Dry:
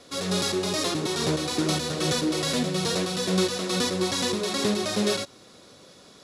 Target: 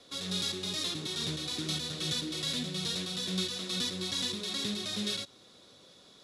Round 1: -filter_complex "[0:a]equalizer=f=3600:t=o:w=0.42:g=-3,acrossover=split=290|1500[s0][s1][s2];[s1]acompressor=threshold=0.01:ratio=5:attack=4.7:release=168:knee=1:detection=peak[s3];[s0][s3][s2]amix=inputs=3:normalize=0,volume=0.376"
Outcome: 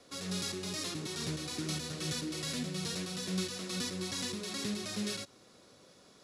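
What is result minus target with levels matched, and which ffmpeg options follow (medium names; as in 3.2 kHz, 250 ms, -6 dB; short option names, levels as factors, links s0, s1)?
4 kHz band -3.5 dB
-filter_complex "[0:a]equalizer=f=3600:t=o:w=0.42:g=8.5,acrossover=split=290|1500[s0][s1][s2];[s1]acompressor=threshold=0.01:ratio=5:attack=4.7:release=168:knee=1:detection=peak[s3];[s0][s3][s2]amix=inputs=3:normalize=0,volume=0.376"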